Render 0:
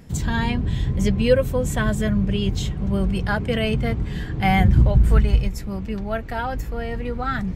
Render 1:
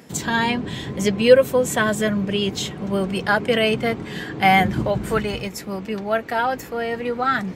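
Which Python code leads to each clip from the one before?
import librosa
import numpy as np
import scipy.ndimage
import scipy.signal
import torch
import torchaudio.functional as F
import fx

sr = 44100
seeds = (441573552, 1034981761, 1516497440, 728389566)

y = scipy.signal.sosfilt(scipy.signal.butter(2, 280.0, 'highpass', fs=sr, output='sos'), x)
y = y * 10.0 ** (6.0 / 20.0)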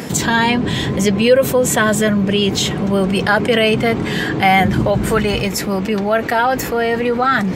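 y = fx.env_flatten(x, sr, amount_pct=50)
y = y * 10.0 ** (-1.0 / 20.0)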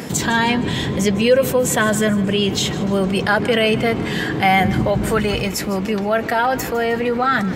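y = fx.echo_feedback(x, sr, ms=155, feedback_pct=45, wet_db=-17.5)
y = y * 10.0 ** (-2.5 / 20.0)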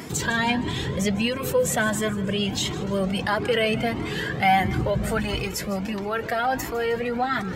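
y = fx.comb_cascade(x, sr, direction='rising', hz=1.5)
y = y * 10.0 ** (-1.5 / 20.0)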